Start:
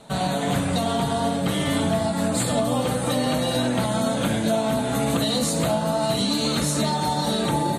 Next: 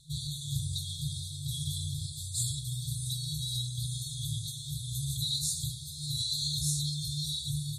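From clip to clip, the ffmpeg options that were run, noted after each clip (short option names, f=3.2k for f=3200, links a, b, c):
-af "afftfilt=real='re*(1-between(b*sr/4096,160,3300))':imag='im*(1-between(b*sr/4096,160,3300))':win_size=4096:overlap=0.75,volume=-4.5dB"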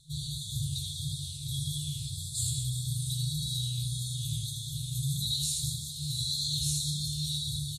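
-af "aecho=1:1:80|200|380|650|1055:0.631|0.398|0.251|0.158|0.1,flanger=delay=8.6:depth=8.1:regen=85:speed=1.7:shape=triangular,volume=3.5dB"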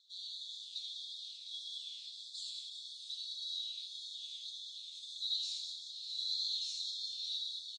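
-af "asuperpass=centerf=2400:order=8:qfactor=0.54,aecho=1:1:176:0.15,volume=-4dB"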